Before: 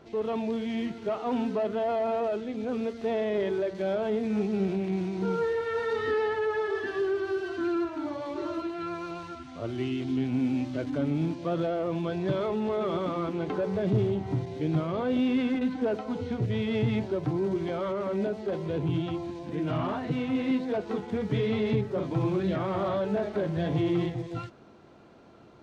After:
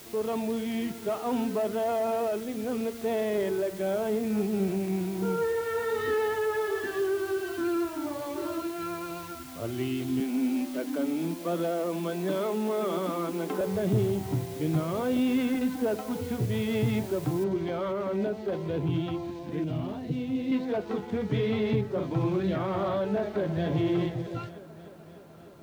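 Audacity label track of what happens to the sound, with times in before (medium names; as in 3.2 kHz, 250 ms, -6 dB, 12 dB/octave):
3.420000	6.000000	decimation joined by straight lines rate divided by 4×
10.200000	13.610000	steep high-pass 170 Hz 96 dB/octave
17.440000	17.440000	noise floor step -49 dB -69 dB
19.640000	20.520000	peaking EQ 1.3 kHz -14.5 dB 1.9 oct
23.190000	23.680000	echo throw 300 ms, feedback 75%, level -12 dB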